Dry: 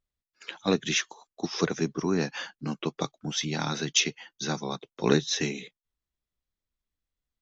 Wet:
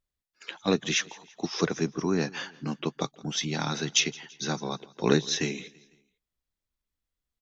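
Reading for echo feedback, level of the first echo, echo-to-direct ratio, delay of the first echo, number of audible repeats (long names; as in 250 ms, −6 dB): 48%, −22.5 dB, −21.5 dB, 167 ms, 2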